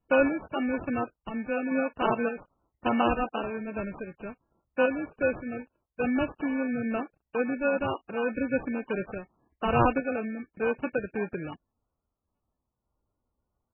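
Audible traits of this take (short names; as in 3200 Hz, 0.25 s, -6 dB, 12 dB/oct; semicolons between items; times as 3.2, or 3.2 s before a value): aliases and images of a low sample rate 2000 Hz, jitter 0%; random-step tremolo 3.5 Hz; MP3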